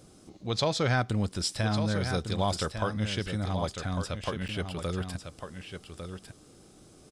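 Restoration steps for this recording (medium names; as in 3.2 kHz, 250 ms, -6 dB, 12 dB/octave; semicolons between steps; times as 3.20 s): interpolate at 4.48 s, 8.8 ms; inverse comb 1151 ms -8 dB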